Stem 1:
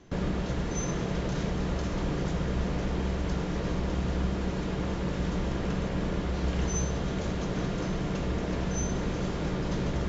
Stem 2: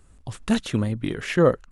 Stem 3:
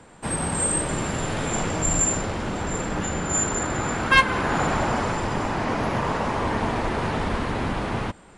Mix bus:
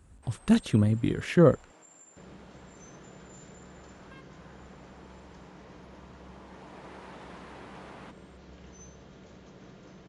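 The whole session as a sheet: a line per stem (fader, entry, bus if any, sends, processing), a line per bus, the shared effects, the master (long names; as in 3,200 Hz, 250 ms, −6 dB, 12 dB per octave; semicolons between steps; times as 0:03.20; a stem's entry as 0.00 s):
−18.0 dB, 2.05 s, no send, low-shelf EQ 150 Hz −5 dB
−5.5 dB, 0.00 s, no send, low-shelf EQ 360 Hz +8.5 dB
0:06.17 −22.5 dB → 0:06.94 −13.5 dB, 0.00 s, no send, high-pass filter 290 Hz 12 dB per octave; downward compressor 6 to 1, threshold −31 dBFS, peak gain reduction 18 dB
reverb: not used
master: high-pass filter 55 Hz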